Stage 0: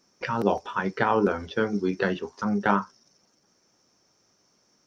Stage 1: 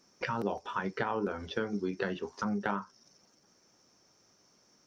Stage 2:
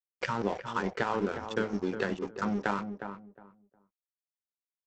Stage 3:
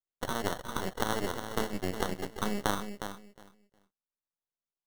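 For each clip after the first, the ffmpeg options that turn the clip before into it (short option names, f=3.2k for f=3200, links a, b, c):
-af "acompressor=threshold=-32dB:ratio=3"
-filter_complex "[0:a]aresample=16000,aeval=exprs='sgn(val(0))*max(abs(val(0))-0.00668,0)':c=same,aresample=44100,asplit=2[a][b];[b]adelay=360,lowpass=f=1.2k:p=1,volume=-7.5dB,asplit=2[c][d];[d]adelay=360,lowpass=f=1.2k:p=1,volume=0.22,asplit=2[e][f];[f]adelay=360,lowpass=f=1.2k:p=1,volume=0.22[g];[a][c][e][g]amix=inputs=4:normalize=0,volume=3.5dB"
-af "aresample=8000,aeval=exprs='max(val(0),0)':c=same,aresample=44100,acrusher=samples=18:mix=1:aa=0.000001,volume=2dB"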